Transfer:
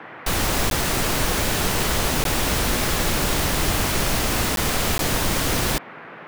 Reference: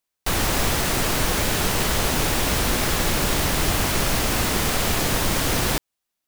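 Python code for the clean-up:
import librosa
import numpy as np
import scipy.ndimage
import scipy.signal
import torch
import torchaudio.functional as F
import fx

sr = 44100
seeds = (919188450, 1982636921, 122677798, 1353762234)

y = fx.fix_interpolate(x, sr, at_s=(0.7, 2.24, 4.56, 4.98), length_ms=12.0)
y = fx.noise_reduce(y, sr, print_start_s=5.76, print_end_s=6.26, reduce_db=30.0)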